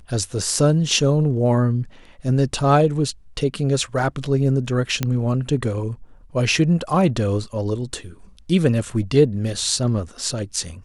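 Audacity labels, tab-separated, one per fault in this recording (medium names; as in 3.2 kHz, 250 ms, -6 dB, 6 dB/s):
5.030000	5.030000	pop -7 dBFS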